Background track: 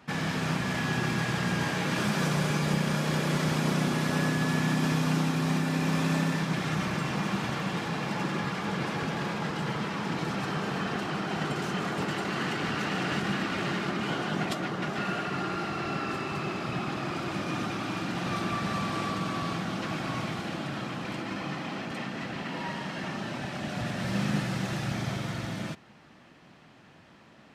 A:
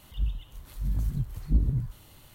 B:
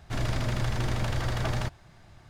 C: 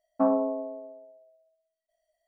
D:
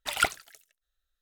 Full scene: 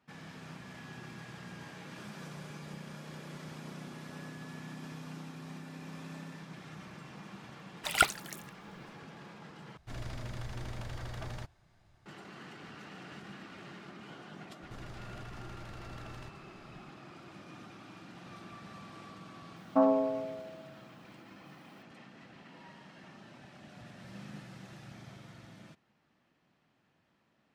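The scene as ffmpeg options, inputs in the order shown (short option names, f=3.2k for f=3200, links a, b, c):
-filter_complex "[2:a]asplit=2[a][b];[0:a]volume=-18.5dB[c];[4:a]dynaudnorm=f=100:g=5:m=15dB[d];[b]acompressor=threshold=-37dB:ratio=6:attack=3.2:release=140:knee=1:detection=peak[e];[3:a]crystalizer=i=4:c=0[f];[c]asplit=2[g][h];[g]atrim=end=9.774[i];[a]atrim=end=2.29,asetpts=PTS-STARTPTS,volume=-12.5dB[j];[h]atrim=start=12.056[k];[d]atrim=end=1.21,asetpts=PTS-STARTPTS,volume=-4dB,afade=t=in:d=0.004:c=hsin,afade=t=out:st=1.206:d=0.004:c=hsin,adelay=343098S[l];[e]atrim=end=2.29,asetpts=PTS-STARTPTS,volume=-7dB,afade=t=in:d=0.004:c=hsin,afade=t=out:st=2.286:d=0.004:c=hsin,adelay=14610[m];[f]atrim=end=2.27,asetpts=PTS-STARTPTS,volume=-2dB,afade=t=in:d=0.004:c=hsin,afade=t=out:st=2.266:d=0.004:c=hsin,adelay=862596S[n];[i][j]acrossfade=d=0.004:c1=hsin:c2=hsin[o];[o][k]acrossfade=d=0.004:c1=hsin:c2=hsin[p];[p][l][m][n]amix=inputs=4:normalize=0"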